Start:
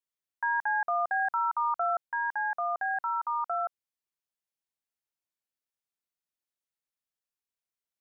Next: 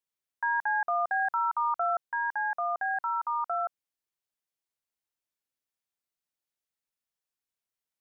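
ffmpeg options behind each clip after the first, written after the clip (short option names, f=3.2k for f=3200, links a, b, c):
-af "acontrast=22,volume=-4.5dB"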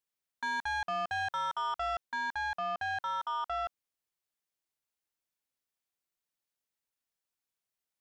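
-af "asoftclip=type=tanh:threshold=-30dB"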